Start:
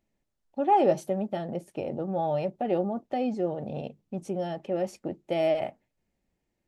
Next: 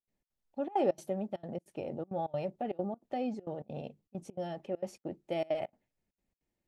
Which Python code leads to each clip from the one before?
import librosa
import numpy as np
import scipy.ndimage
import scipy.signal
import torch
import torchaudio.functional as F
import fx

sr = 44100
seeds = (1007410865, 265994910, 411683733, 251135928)

y = fx.step_gate(x, sr, bpm=199, pattern='.xx.xxxxx', floor_db=-24.0, edge_ms=4.5)
y = y * librosa.db_to_amplitude(-6.0)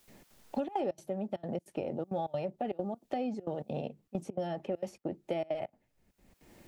y = fx.band_squash(x, sr, depth_pct=100)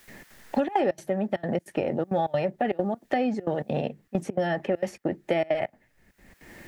y = fx.peak_eq(x, sr, hz=1800.0, db=12.5, octaves=0.57)
y = y * librosa.db_to_amplitude(8.5)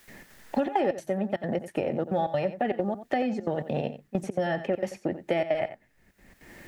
y = x + 10.0 ** (-12.5 / 20.0) * np.pad(x, (int(89 * sr / 1000.0), 0))[:len(x)]
y = y * librosa.db_to_amplitude(-1.5)